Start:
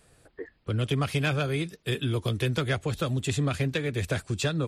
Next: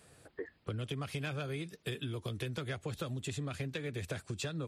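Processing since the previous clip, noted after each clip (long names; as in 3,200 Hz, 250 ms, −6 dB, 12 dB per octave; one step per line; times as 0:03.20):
high-pass filter 73 Hz
downward compressor 6 to 1, threshold −36 dBFS, peak gain reduction 13.5 dB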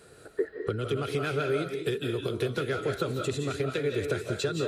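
hollow resonant body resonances 410/1,400/4,000 Hz, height 12 dB, ringing for 25 ms
on a send at −3 dB: convolution reverb RT60 0.40 s, pre-delay 130 ms
on the sum: level +3.5 dB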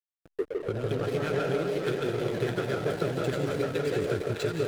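delay with pitch and tempo change per echo 177 ms, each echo +3 semitones, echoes 3, each echo −6 dB
echo with a time of its own for lows and highs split 1,000 Hz, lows 156 ms, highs 608 ms, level −3.5 dB
slack as between gear wheels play −30.5 dBFS
level −1.5 dB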